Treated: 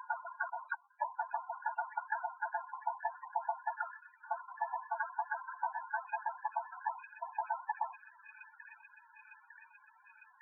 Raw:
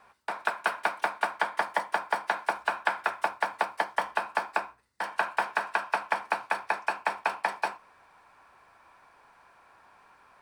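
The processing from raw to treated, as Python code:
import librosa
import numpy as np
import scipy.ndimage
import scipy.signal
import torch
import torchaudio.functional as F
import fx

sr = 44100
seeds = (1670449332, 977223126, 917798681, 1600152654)

y = fx.block_reorder(x, sr, ms=249.0, group=4)
y = fx.echo_wet_highpass(y, sr, ms=904, feedback_pct=72, hz=1800.0, wet_db=-11.0)
y = fx.spec_topn(y, sr, count=8)
y = F.gain(torch.from_numpy(y), -4.0).numpy()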